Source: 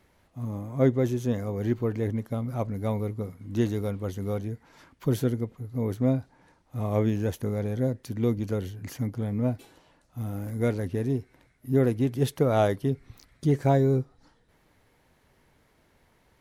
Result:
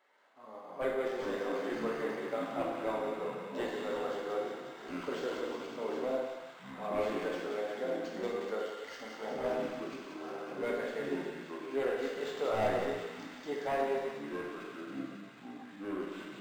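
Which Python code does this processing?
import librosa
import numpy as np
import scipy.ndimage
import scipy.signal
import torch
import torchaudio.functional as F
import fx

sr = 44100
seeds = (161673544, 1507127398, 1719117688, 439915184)

p1 = scipy.signal.sosfilt(scipy.signal.bessel(4, 720.0, 'highpass', norm='mag', fs=sr, output='sos'), x)
p2 = fx.high_shelf(p1, sr, hz=2500.0, db=9.0)
p3 = fx.notch(p2, sr, hz=2400.0, q=6.5)
p4 = fx.rider(p3, sr, range_db=10, speed_s=0.5)
p5 = p3 + (p4 * 10.0 ** (-2.0 / 20.0))
p6 = 10.0 ** (-20.5 / 20.0) * (np.abs((p5 / 10.0 ** (-20.5 / 20.0) + 3.0) % 4.0 - 2.0) - 1.0)
p7 = fx.echo_pitch(p6, sr, ms=131, semitones=-5, count=2, db_per_echo=-6.0)
p8 = fx.spacing_loss(p7, sr, db_at_10k=30)
p9 = p8 + fx.echo_wet_highpass(p8, sr, ms=181, feedback_pct=73, hz=2000.0, wet_db=-4, dry=0)
p10 = fx.rev_gated(p9, sr, seeds[0], gate_ms=420, shape='falling', drr_db=-2.5)
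p11 = np.interp(np.arange(len(p10)), np.arange(len(p10))[::4], p10[::4])
y = p11 * 10.0 ** (-5.0 / 20.0)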